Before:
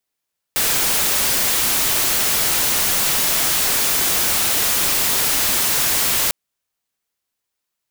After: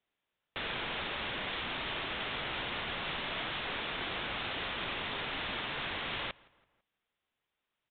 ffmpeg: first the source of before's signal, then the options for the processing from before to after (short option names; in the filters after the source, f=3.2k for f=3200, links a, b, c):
-f lavfi -i "anoisesrc=c=white:a=0.218:d=5.75:r=44100:seed=1"
-filter_complex "[0:a]alimiter=level_in=1dB:limit=-24dB:level=0:latency=1,volume=-1dB,asplit=2[a][b];[b]adelay=166,lowpass=f=2.8k:p=1,volume=-24dB,asplit=2[c][d];[d]adelay=166,lowpass=f=2.8k:p=1,volume=0.51,asplit=2[e][f];[f]adelay=166,lowpass=f=2.8k:p=1,volume=0.51[g];[a][c][e][g]amix=inputs=4:normalize=0,aresample=8000,aresample=44100"